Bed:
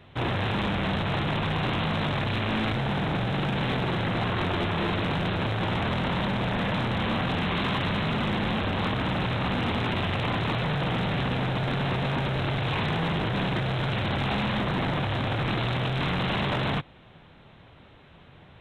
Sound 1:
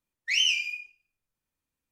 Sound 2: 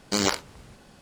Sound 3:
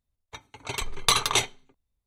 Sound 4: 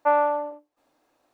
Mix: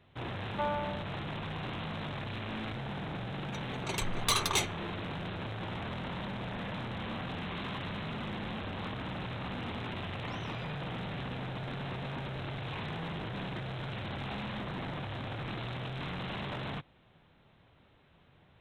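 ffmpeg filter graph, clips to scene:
-filter_complex "[0:a]volume=-11.5dB[a];[3:a]asoftclip=type=tanh:threshold=-16.5dB[b];[1:a]acompressor=threshold=-43dB:ratio=6:attack=3.2:release=140:knee=1:detection=peak[c];[4:a]atrim=end=1.33,asetpts=PTS-STARTPTS,volume=-13.5dB,afade=t=in:d=0.004:c=hsin,afade=t=out:st=1.326:d=0.004:c=hsin,adelay=530[d];[b]atrim=end=2.06,asetpts=PTS-STARTPTS,volume=-4dB,afade=t=in:d=0.004:c=hsin,afade=t=out:st=2.056:d=0.004:c=hsin,adelay=3200[e];[c]atrim=end=1.91,asetpts=PTS-STARTPTS,volume=-10.5dB,afade=t=in:d=0.004:c=hsin,afade=t=out:st=1.906:d=0.004:c=hsin,adelay=9970[f];[a][d][e][f]amix=inputs=4:normalize=0"

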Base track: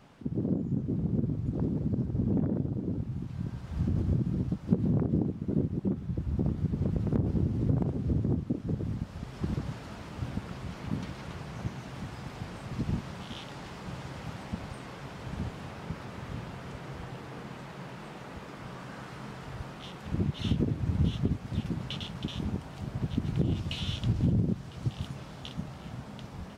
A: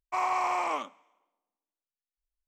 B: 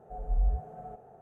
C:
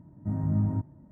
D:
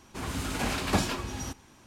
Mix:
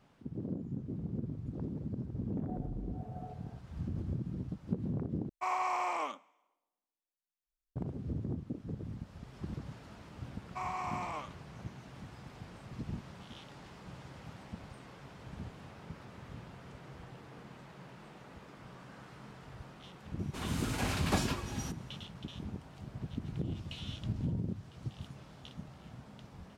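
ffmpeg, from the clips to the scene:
-filter_complex "[1:a]asplit=2[a][b];[0:a]volume=-9dB[c];[2:a]acompressor=threshold=-37dB:ratio=6:attack=3.2:release=140:knee=1:detection=peak[d];[b]aresample=32000,aresample=44100[e];[3:a]acrossover=split=200|730[f][g][h];[h]adelay=40[i];[f]adelay=240[j];[j][g][i]amix=inputs=3:normalize=0[k];[c]asplit=2[l][m];[l]atrim=end=5.294[n];[a]atrim=end=2.47,asetpts=PTS-STARTPTS,volume=-5dB[o];[m]atrim=start=7.756[p];[d]atrim=end=1.21,asetpts=PTS-STARTPTS,volume=-4dB,afade=t=in:d=0.004:c=hsin,afade=t=out:st=1.206:d=0.004:c=hsin,adelay=2380[q];[e]atrim=end=2.47,asetpts=PTS-STARTPTS,volume=-10dB,afade=t=in:d=0.004:c=hsin,afade=t=out:st=2.466:d=0.004:c=hsin,adelay=10430[r];[4:a]atrim=end=1.86,asetpts=PTS-STARTPTS,volume=-5dB,afade=t=in:d=0.004:c=hsin,afade=t=out:st=1.856:d=0.004:c=hsin,adelay=20190[s];[k]atrim=end=1.11,asetpts=PTS-STARTPTS,volume=-16dB,afade=t=in:d=0.004:c=hsin,afade=t=out:st=1.106:d=0.004:c=hsin,adelay=1038996S[t];[n][o]acrossfade=d=0.004:c1=hsin:c2=hsin[u];[u][p]acrossfade=d=0.004:c1=hsin:c2=hsin[v];[v][q][r][s][t]amix=inputs=5:normalize=0"

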